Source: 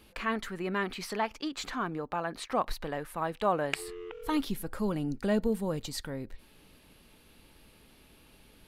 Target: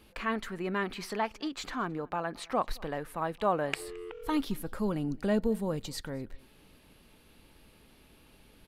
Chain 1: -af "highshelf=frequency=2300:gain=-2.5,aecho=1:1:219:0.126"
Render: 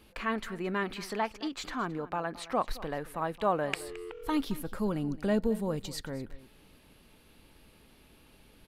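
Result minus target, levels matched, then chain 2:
echo-to-direct +8 dB
-af "highshelf=frequency=2300:gain=-2.5,aecho=1:1:219:0.0501"

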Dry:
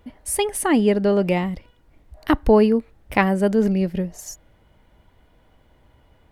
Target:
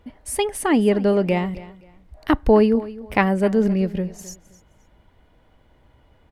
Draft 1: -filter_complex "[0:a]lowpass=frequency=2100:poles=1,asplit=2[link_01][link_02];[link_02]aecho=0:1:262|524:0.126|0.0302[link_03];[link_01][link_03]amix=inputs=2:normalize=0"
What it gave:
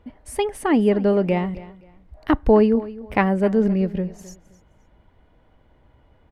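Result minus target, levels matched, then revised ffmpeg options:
8,000 Hz band −8.0 dB
-filter_complex "[0:a]lowpass=frequency=6900:poles=1,asplit=2[link_01][link_02];[link_02]aecho=0:1:262|524:0.126|0.0302[link_03];[link_01][link_03]amix=inputs=2:normalize=0"

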